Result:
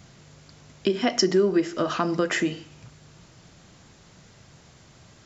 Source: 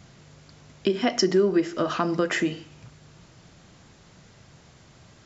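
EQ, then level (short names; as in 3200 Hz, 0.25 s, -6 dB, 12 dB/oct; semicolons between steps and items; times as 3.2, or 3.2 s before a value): high shelf 6700 Hz +5 dB; 0.0 dB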